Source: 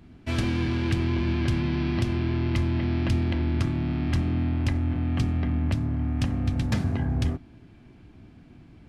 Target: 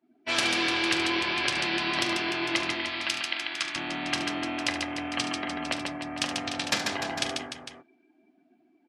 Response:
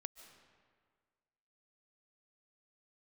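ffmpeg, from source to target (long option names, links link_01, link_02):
-af "asetnsamples=nb_out_samples=441:pad=0,asendcmd='2.75 highpass f 1300;3.76 highpass f 610',highpass=590,afftdn=noise_reduction=27:noise_floor=-54,aecho=1:1:42|72|141|298|453:0.211|0.299|0.596|0.335|0.266,adynamicequalizer=threshold=0.00316:dfrequency=2300:dqfactor=0.7:tfrequency=2300:tqfactor=0.7:attack=5:release=100:ratio=0.375:range=3:mode=boostabove:tftype=highshelf,volume=5.5dB"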